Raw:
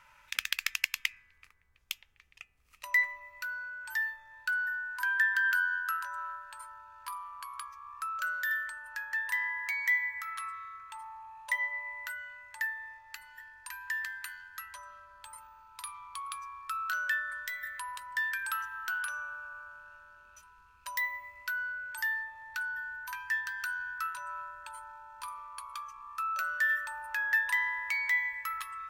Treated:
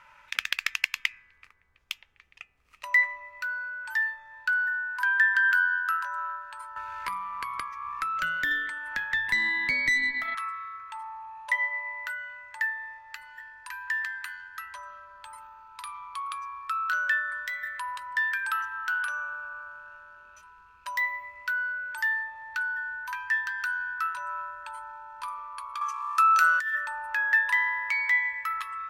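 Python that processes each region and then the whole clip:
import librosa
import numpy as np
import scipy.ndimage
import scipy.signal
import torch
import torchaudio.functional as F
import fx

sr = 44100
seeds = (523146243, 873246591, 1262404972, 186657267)

y = fx.chain(x, sr, fx.peak_eq(hz=2100.0, db=12.5, octaves=0.28),
    fx.tube_stage(drive_db=22.0, bias=0.75),
    fx.band_squash(depth_pct=70), at=(6.76, 10.35))
y = fx.chain(y, sr, fx.peak_eq(hz=9100.0, db=14.5, octaves=2.6),
    fx.over_compress(threshold_db=-29.0, ratio=-0.5),
    fx.highpass_res(hz=930.0, q=1.5), at=(25.81, 26.75))
y = fx.lowpass(y, sr, hz=2500.0, slope=6)
y = fx.low_shelf(y, sr, hz=170.0, db=-8.0)
y = F.gain(torch.from_numpy(y), 7.0).numpy()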